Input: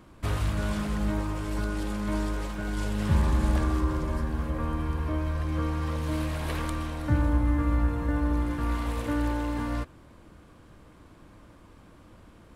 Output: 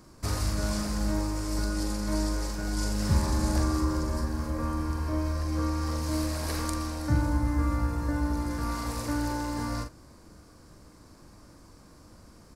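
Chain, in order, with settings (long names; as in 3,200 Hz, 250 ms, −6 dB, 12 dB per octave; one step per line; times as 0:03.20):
high shelf with overshoot 4,000 Hz +7 dB, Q 3
double-tracking delay 42 ms −6 dB
level −1.5 dB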